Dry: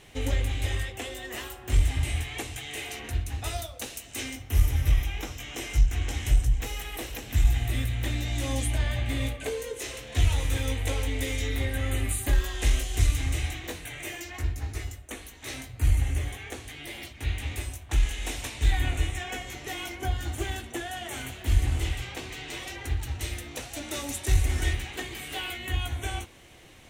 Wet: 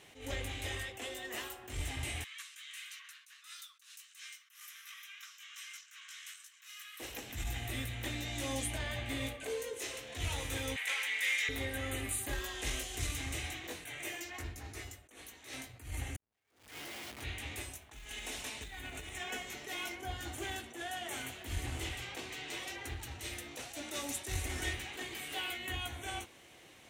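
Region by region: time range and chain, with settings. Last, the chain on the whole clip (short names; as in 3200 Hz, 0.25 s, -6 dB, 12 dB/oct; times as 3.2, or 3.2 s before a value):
2.24–7 rippled Chebyshev high-pass 1100 Hz, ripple 3 dB + flange 1.4 Hz, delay 4.9 ms, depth 9.8 ms, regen +53%
10.76–11.49 HPF 1200 Hz + bell 2000 Hz +11 dB 1.2 oct
16.16–17.22 negative-ratio compressor -43 dBFS + Schmitt trigger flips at -48 dBFS
17.74–19.92 short-mantissa float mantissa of 4-bit + comb 4.7 ms, depth 36% + compressor 10:1, threshold -29 dBFS
whole clip: HPF 240 Hz 6 dB/oct; attack slew limiter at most 120 dB/s; gain -4 dB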